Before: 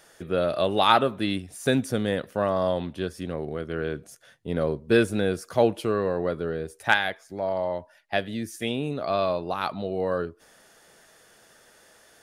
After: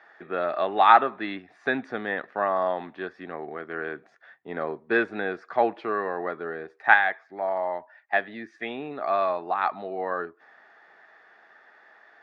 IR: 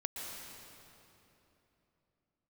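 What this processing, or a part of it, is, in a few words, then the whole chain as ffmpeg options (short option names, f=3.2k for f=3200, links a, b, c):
phone earpiece: -af "highpass=370,equalizer=f=520:t=q:w=4:g=-8,equalizer=f=780:t=q:w=4:g=7,equalizer=f=1.2k:t=q:w=4:g=4,equalizer=f=1.8k:t=q:w=4:g=8,equalizer=f=3k:t=q:w=4:g=-10,lowpass=f=3.2k:w=0.5412,lowpass=f=3.2k:w=1.3066"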